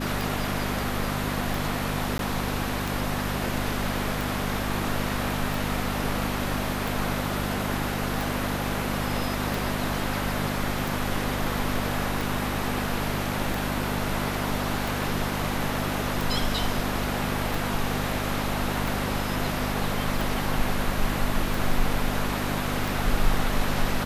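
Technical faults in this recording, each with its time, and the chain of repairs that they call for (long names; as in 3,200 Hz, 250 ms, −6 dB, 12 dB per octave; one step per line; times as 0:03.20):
mains hum 50 Hz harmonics 5 −31 dBFS
scratch tick 45 rpm
0:02.18–0:02.19: drop-out 12 ms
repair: click removal
hum removal 50 Hz, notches 5
repair the gap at 0:02.18, 12 ms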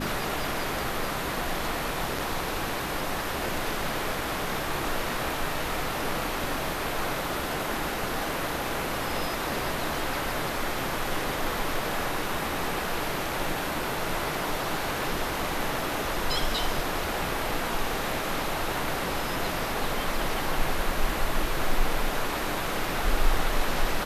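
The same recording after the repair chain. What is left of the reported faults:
none of them is left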